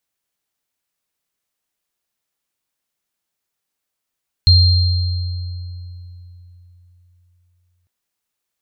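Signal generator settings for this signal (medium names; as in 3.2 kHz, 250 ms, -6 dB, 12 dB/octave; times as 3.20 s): sine partials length 3.40 s, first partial 88.6 Hz, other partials 4.19 kHz, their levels -3 dB, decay 3.64 s, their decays 1.99 s, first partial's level -7 dB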